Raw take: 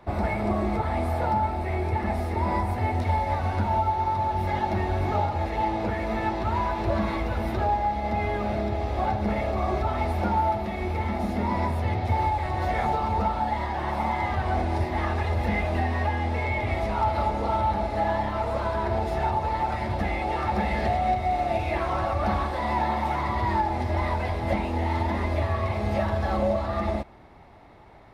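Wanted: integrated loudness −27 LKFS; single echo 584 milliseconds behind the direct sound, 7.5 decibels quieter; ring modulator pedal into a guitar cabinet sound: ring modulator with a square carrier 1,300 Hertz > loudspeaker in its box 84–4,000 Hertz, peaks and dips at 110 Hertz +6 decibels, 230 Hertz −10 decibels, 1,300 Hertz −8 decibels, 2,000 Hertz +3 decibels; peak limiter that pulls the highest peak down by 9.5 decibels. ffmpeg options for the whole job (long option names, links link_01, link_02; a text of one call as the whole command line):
ffmpeg -i in.wav -af "alimiter=limit=-21.5dB:level=0:latency=1,aecho=1:1:584:0.422,aeval=exprs='val(0)*sgn(sin(2*PI*1300*n/s))':channel_layout=same,highpass=84,equalizer=frequency=110:width_type=q:width=4:gain=6,equalizer=frequency=230:width_type=q:width=4:gain=-10,equalizer=frequency=1300:width_type=q:width=4:gain=-8,equalizer=frequency=2000:width_type=q:width=4:gain=3,lowpass=frequency=4000:width=0.5412,lowpass=frequency=4000:width=1.3066,volume=2dB" out.wav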